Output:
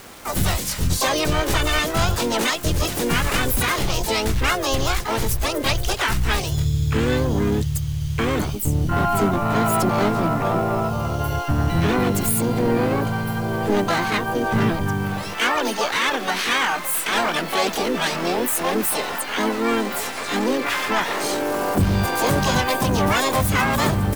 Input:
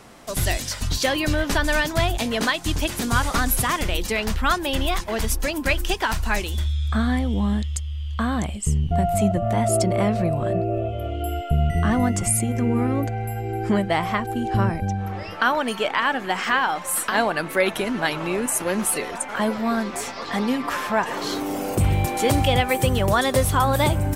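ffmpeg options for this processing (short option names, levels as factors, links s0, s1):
-filter_complex "[0:a]asoftclip=type=tanh:threshold=0.112,asplit=4[s0][s1][s2][s3];[s1]asetrate=52444,aresample=44100,atempo=0.840896,volume=0.501[s4];[s2]asetrate=66075,aresample=44100,atempo=0.66742,volume=0.708[s5];[s3]asetrate=88200,aresample=44100,atempo=0.5,volume=1[s6];[s0][s4][s5][s6]amix=inputs=4:normalize=0,acrusher=bits=6:mix=0:aa=0.000001"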